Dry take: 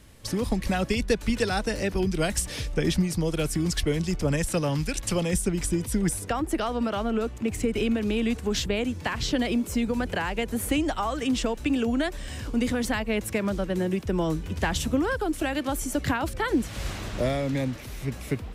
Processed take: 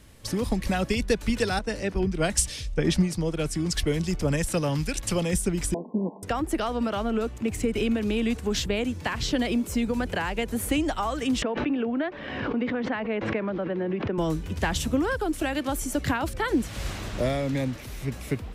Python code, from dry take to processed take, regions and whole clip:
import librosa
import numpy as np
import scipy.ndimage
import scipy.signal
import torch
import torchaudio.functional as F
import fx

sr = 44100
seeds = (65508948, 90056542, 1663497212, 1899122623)

y = fx.chain(x, sr, fx.lowpass(hz=10000.0, slope=12),
    fx.band_widen(depth_pct=100), at=(1.59, 3.75))
y = fx.chain(y, sr, fx.lower_of_two(delay_ms=4.6),
    fx.brickwall_bandpass(low_hz=170.0, high_hz=1100.0), at=(5.74, 6.23))
y = fx.chain(y, sr, fx.bandpass_edges(low_hz=230.0, high_hz=2500.0),
    fx.air_absorb(metres=190.0),
    fx.pre_swell(db_per_s=37.0), at=(11.42, 14.18))